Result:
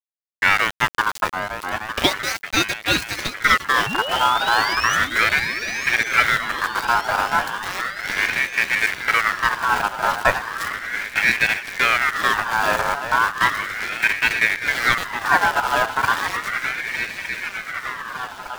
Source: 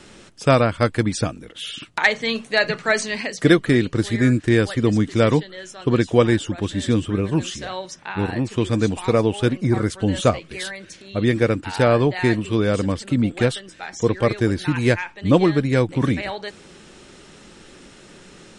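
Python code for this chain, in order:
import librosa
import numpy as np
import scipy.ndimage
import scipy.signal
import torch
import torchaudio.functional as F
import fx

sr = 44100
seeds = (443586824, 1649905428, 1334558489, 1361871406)

p1 = fx.tape_start_head(x, sr, length_s=0.68)
p2 = scipy.signal.sosfilt(scipy.signal.butter(2, 7600.0, 'lowpass', fs=sr, output='sos'), p1)
p3 = fx.rider(p2, sr, range_db=4, speed_s=0.5)
p4 = p2 + (p3 * librosa.db_to_amplitude(1.5))
p5 = np.where(np.abs(p4) >= 10.0 ** (-14.0 / 20.0), p4, 0.0)
p6 = fx.spec_paint(p5, sr, seeds[0], shape='rise', start_s=3.86, length_s=1.1, low_hz=1400.0, high_hz=4600.0, level_db=-19.0)
p7 = p6 + fx.echo_swing(p6, sr, ms=1210, ratio=3, feedback_pct=63, wet_db=-9.5, dry=0)
p8 = fx.ring_lfo(p7, sr, carrier_hz=1600.0, swing_pct=30, hz=0.35)
y = p8 * librosa.db_to_amplitude(-5.0)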